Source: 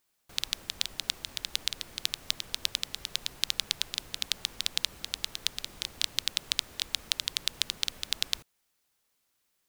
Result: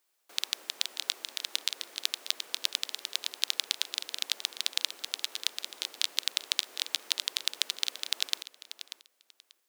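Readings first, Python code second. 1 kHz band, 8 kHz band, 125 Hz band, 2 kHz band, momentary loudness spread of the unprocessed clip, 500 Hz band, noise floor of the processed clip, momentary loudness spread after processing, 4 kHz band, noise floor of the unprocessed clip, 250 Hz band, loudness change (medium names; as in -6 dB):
0.0 dB, 0.0 dB, under -25 dB, 0.0 dB, 5 LU, 0.0 dB, -75 dBFS, 7 LU, 0.0 dB, -76 dBFS, no reading, 0.0 dB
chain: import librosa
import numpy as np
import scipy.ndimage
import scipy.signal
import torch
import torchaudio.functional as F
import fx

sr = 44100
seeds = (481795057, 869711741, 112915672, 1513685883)

p1 = scipy.signal.sosfilt(scipy.signal.butter(4, 330.0, 'highpass', fs=sr, output='sos'), x)
y = p1 + fx.echo_feedback(p1, sr, ms=588, feedback_pct=18, wet_db=-13, dry=0)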